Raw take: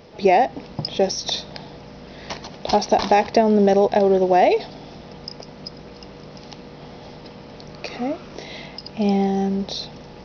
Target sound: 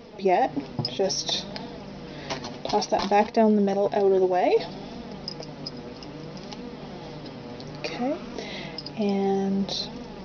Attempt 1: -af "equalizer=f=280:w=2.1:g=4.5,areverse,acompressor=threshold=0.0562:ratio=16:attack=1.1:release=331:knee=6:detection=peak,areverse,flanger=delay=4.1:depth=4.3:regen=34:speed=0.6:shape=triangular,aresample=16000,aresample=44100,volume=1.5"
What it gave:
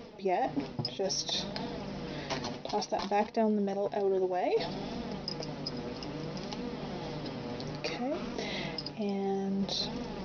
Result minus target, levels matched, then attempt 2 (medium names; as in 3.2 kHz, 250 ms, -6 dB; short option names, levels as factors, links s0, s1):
compression: peak gain reduction +9 dB
-af "equalizer=f=280:w=2.1:g=4.5,areverse,acompressor=threshold=0.168:ratio=16:attack=1.1:release=331:knee=6:detection=peak,areverse,flanger=delay=4.1:depth=4.3:regen=34:speed=0.6:shape=triangular,aresample=16000,aresample=44100,volume=1.5"